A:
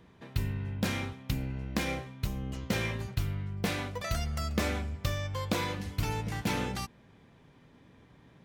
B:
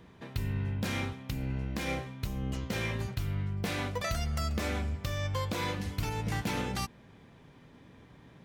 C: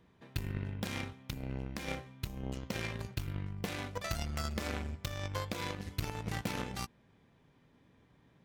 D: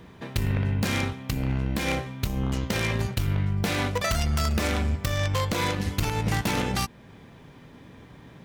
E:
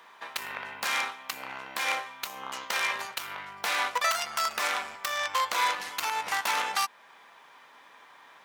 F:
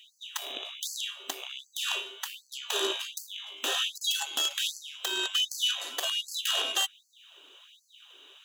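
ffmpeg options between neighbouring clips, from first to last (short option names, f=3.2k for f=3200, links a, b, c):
-af "alimiter=level_in=1dB:limit=-24dB:level=0:latency=1:release=219,volume=-1dB,volume=3dB"
-af "aeval=exprs='0.0841*(cos(1*acos(clip(val(0)/0.0841,-1,1)))-cos(1*PI/2))+0.0237*(cos(3*acos(clip(val(0)/0.0841,-1,1)))-cos(3*PI/2))+0.00188*(cos(5*acos(clip(val(0)/0.0841,-1,1)))-cos(5*PI/2))':c=same,volume=1dB"
-filter_complex "[0:a]asplit=2[a][b];[b]alimiter=level_in=5dB:limit=-24dB:level=0:latency=1:release=304,volume=-5dB,volume=-0.5dB[c];[a][c]amix=inputs=2:normalize=0,aeval=exprs='0.141*sin(PI/2*2.51*val(0)/0.141)':c=same"
-af "highpass=f=1k:t=q:w=1.7"
-af "afftfilt=real='real(if(lt(b,920),b+92*(1-2*mod(floor(b/92),2)),b),0)':imag='imag(if(lt(b,920),b+92*(1-2*mod(floor(b/92),2)),b),0)':win_size=2048:overlap=0.75,afftfilt=real='re*gte(b*sr/1024,240*pow(4300/240,0.5+0.5*sin(2*PI*1.3*pts/sr)))':imag='im*gte(b*sr/1024,240*pow(4300/240,0.5+0.5*sin(2*PI*1.3*pts/sr)))':win_size=1024:overlap=0.75"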